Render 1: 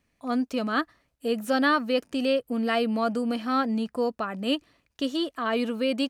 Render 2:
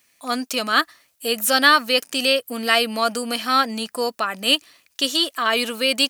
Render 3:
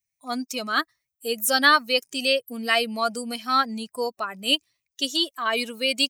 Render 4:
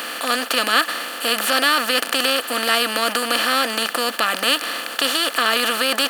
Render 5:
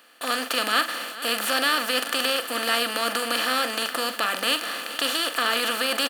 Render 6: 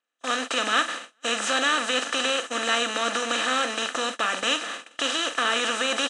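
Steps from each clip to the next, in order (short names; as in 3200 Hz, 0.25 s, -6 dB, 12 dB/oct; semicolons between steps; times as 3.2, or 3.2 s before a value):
tilt +4.5 dB/oct; gain +7 dB
per-bin expansion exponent 1.5; gain -1.5 dB
per-bin compression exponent 0.2; HPF 140 Hz; gain -4.5 dB
gate with hold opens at -17 dBFS; on a send: tapped delay 43/431 ms -10.5/-15.5 dB; on the sum: gain -5.5 dB
nonlinear frequency compression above 3000 Hz 1.5:1; gate -30 dBFS, range -30 dB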